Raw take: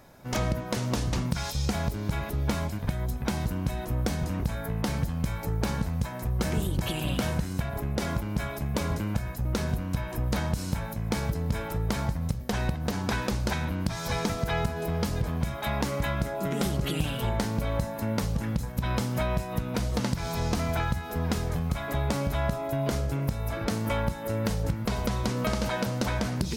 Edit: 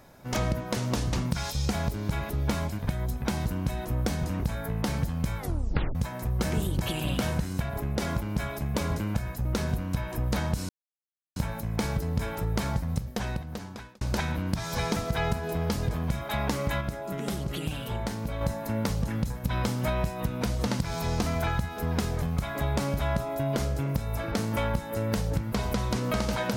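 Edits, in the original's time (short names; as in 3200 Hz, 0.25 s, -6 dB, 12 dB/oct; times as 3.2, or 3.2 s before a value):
5.38 tape stop 0.57 s
10.69 insert silence 0.67 s
12.26–13.34 fade out
16.14–17.74 gain -4 dB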